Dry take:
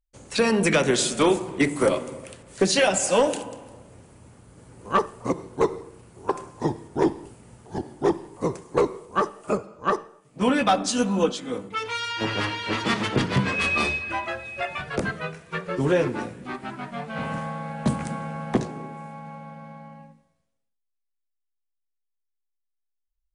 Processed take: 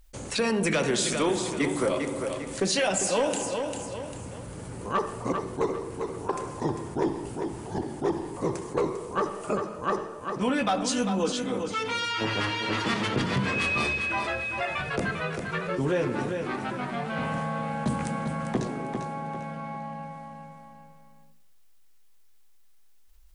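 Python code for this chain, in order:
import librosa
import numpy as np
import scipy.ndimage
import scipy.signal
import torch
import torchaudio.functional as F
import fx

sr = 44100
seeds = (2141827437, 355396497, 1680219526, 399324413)

p1 = x + fx.echo_feedback(x, sr, ms=398, feedback_pct=23, wet_db=-11.0, dry=0)
p2 = fx.env_flatten(p1, sr, amount_pct=50)
y = p2 * librosa.db_to_amplitude(-7.0)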